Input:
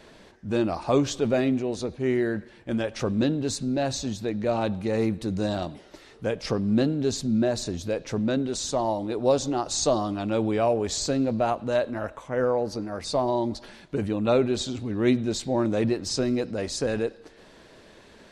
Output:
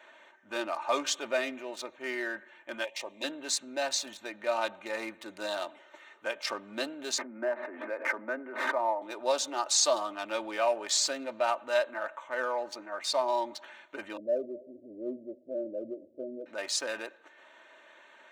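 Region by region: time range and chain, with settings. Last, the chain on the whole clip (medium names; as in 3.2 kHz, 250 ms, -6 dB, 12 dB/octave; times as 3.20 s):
2.84–3.24 s: Butterworth band-stop 1.4 kHz, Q 1.3 + bass shelf 390 Hz -10 dB
7.18–9.02 s: Chebyshev band-pass 230–2100 Hz, order 4 + swell ahead of each attack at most 29 dB/s
14.17–16.46 s: steep low-pass 630 Hz 96 dB/octave + delay 255 ms -23.5 dB
whole clip: local Wiener filter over 9 samples; high-pass 1 kHz 12 dB/octave; comb 3.3 ms, depth 65%; trim +2 dB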